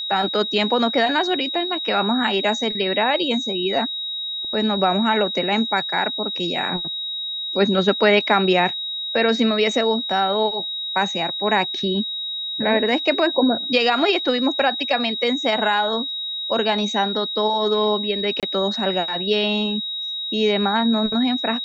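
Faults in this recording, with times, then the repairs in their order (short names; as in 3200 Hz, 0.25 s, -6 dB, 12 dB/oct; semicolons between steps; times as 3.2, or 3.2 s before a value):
tone 3800 Hz -25 dBFS
18.4–18.43 gap 27 ms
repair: notch 3800 Hz, Q 30; interpolate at 18.4, 27 ms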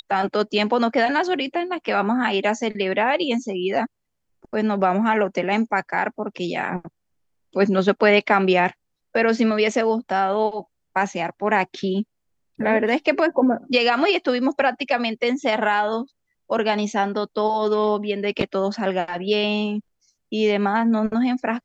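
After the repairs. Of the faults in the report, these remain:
none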